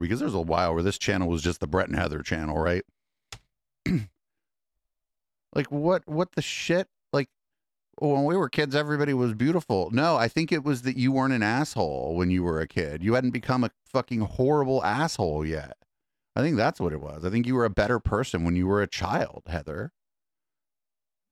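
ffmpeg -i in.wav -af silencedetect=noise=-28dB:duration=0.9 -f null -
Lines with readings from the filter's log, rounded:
silence_start: 4.03
silence_end: 5.56 | silence_duration: 1.53
silence_start: 19.86
silence_end: 21.31 | silence_duration: 1.46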